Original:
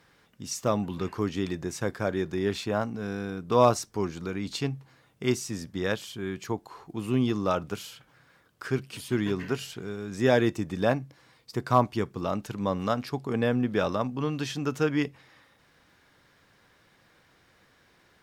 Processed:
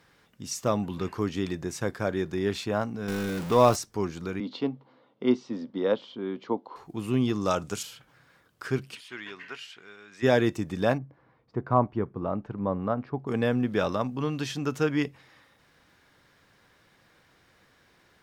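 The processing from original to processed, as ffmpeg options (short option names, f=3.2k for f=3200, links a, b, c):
-filter_complex "[0:a]asettb=1/sr,asplit=3[a][b][c];[a]atrim=end=3.084[d];[b]atrim=start=3.08:end=3.76,asetpts=PTS-STARTPTS,afade=t=in:d=0.004:c=qsin,afade=t=out:st=0.676:d=0.004:c=qsin,aeval=exprs='val(0)+0.5*0.0282*sgn(val(0))':c=same[e];[c]atrim=start=3.756[f];[d][e]acrossfade=d=0.004:c1=hsin:c2=qsin[g];[g][f]acrossfade=d=0.004:c1=qsin:c2=hsin,asettb=1/sr,asplit=3[h][i][j];[h]atrim=end=4.404[k];[i]atrim=start=4.4:end=6.76,asetpts=PTS-STARTPTS,afade=t=in:d=0.004:c=qsin,afade=t=out:st=2.356:d=0.004:c=qsin,highpass=f=160:w=0.5412,highpass=f=160:w=1.3066,equalizer=f=160:t=q:w=4:g=-9,equalizer=f=250:t=q:w=4:g=7,equalizer=f=520:t=q:w=4:g=8,equalizer=f=950:t=q:w=4:g=4,equalizer=f=1.7k:t=q:w=4:g=-9,equalizer=f=2.5k:t=q:w=4:g=-9,lowpass=f=3.6k:w=0.5412,lowpass=f=3.6k:w=1.3066[l];[j]atrim=start=6.756[m];[k][l]acrossfade=d=0.004:c1=hsin:c2=qsin[n];[n][m]acrossfade=d=0.004:c1=qsin:c2=hsin,asettb=1/sr,asplit=3[o][p][q];[o]atrim=end=7.414[r];[p]atrim=start=7.41:end=7.83,asetpts=PTS-STARTPTS,afade=t=in:d=0.004:c=qsin,afade=t=out:st=0.416:d=0.004:c=qsin,equalizer=f=7.4k:t=o:w=1.1:g=12.5[s];[q]atrim=start=7.826[t];[r][s]acrossfade=d=0.004:c1=hsin:c2=qsin[u];[u][t]acrossfade=d=0.004:c1=qsin:c2=hsin,asplit=3[v][w][x];[v]afade=t=out:st=8.94:d=0.02[y];[w]bandpass=f=2.2k:t=q:w=1.1,afade=t=in:st=8.94:d=0.02,afade=t=out:st=10.22:d=0.02[z];[x]afade=t=in:st=10.22:d=0.02[aa];[y][z][aa]amix=inputs=3:normalize=0,asplit=3[ab][ac][ad];[ab]afade=t=out:st=10.97:d=0.02[ae];[ac]lowpass=1.2k,afade=t=in:st=10.97:d=0.02,afade=t=out:st=13.26:d=0.02[af];[ad]afade=t=in:st=13.26:d=0.02[ag];[ae][af][ag]amix=inputs=3:normalize=0"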